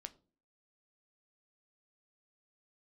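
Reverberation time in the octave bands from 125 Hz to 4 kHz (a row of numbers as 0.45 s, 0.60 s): 0.45 s, 0.55 s, 0.50 s, 0.35 s, 0.25 s, 0.25 s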